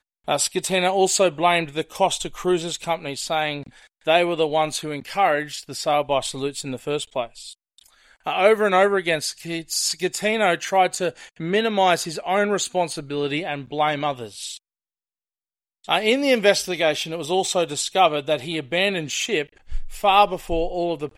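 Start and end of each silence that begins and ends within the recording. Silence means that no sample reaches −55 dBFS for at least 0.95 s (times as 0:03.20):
0:14.58–0:15.84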